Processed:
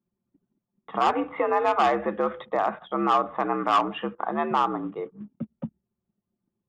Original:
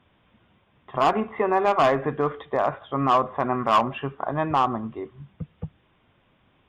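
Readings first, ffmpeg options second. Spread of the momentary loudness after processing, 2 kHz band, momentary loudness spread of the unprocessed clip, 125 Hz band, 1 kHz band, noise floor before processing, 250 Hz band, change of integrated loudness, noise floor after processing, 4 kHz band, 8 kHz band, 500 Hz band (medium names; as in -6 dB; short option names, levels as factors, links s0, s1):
14 LU, -1.0 dB, 17 LU, -9.0 dB, -1.0 dB, -64 dBFS, -1.5 dB, -1.5 dB, -85 dBFS, -1.0 dB, no reading, -2.5 dB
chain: -filter_complex "[0:a]afreqshift=66,asplit=2[s0][s1];[s1]acompressor=threshold=0.0251:ratio=10,volume=0.841[s2];[s0][s2]amix=inputs=2:normalize=0,aresample=22050,aresample=44100,anlmdn=0.1,volume=0.708"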